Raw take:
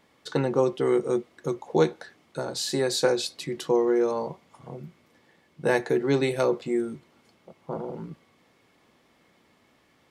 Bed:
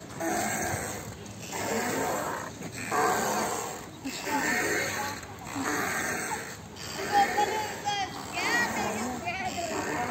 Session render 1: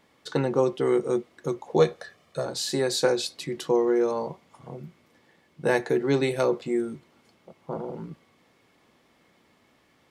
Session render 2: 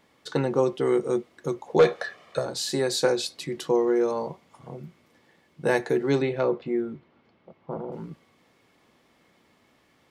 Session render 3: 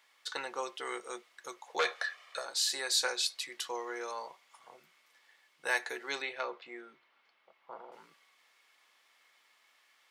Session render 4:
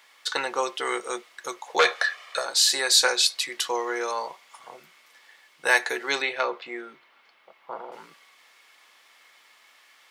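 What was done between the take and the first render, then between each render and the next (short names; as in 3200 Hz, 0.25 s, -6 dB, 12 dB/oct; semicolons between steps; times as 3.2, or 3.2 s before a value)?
1.79–2.46 comb 1.7 ms, depth 62%
1.79–2.39 overdrive pedal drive 18 dB, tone 2200 Hz, clips at -7.5 dBFS; 6.22–7.92 air absorption 270 m
HPF 1300 Hz 12 dB/oct
gain +11 dB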